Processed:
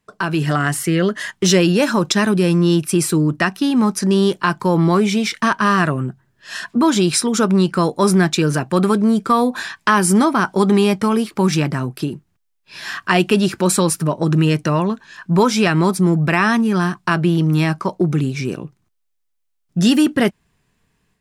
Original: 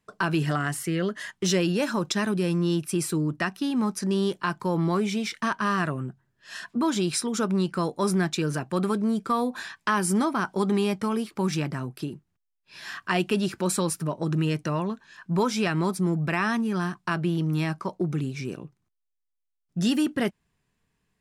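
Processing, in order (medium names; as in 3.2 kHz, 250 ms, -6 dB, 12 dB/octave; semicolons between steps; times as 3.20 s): level rider gain up to 6 dB; trim +4 dB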